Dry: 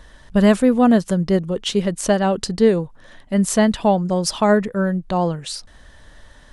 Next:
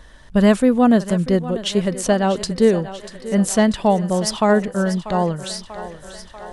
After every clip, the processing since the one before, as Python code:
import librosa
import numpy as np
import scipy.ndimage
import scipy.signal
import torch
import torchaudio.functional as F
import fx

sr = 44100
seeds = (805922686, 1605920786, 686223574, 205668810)

y = fx.echo_thinned(x, sr, ms=640, feedback_pct=68, hz=270.0, wet_db=-13.5)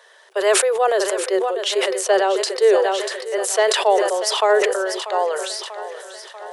y = scipy.signal.sosfilt(scipy.signal.cheby1(8, 1.0, 380.0, 'highpass', fs=sr, output='sos'), x)
y = fx.sustainer(y, sr, db_per_s=36.0)
y = y * librosa.db_to_amplitude(1.0)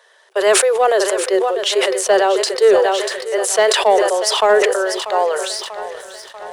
y = fx.leveller(x, sr, passes=1)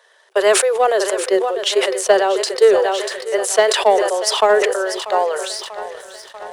y = fx.transient(x, sr, attack_db=5, sustain_db=-1)
y = y * librosa.db_to_amplitude(-2.0)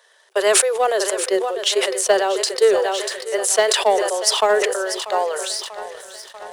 y = fx.high_shelf(x, sr, hz=3600.0, db=7.0)
y = y * librosa.db_to_amplitude(-3.5)